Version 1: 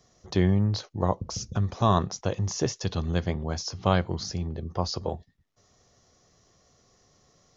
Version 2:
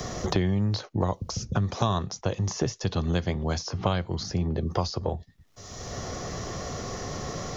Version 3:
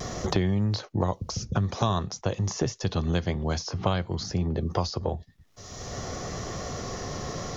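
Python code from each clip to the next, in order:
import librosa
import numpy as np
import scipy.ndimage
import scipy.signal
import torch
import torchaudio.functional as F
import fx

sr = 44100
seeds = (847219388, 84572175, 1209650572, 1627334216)

y1 = fx.band_squash(x, sr, depth_pct=100)
y2 = fx.vibrato(y1, sr, rate_hz=0.52, depth_cents=16.0)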